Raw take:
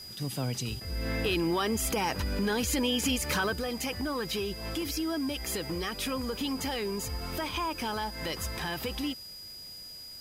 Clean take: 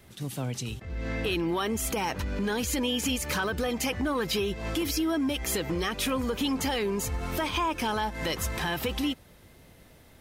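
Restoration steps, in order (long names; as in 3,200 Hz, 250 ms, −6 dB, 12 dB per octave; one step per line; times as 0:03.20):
notch filter 4,900 Hz, Q 30
noise reduction from a noise print 8 dB
level correction +4.5 dB, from 0:03.53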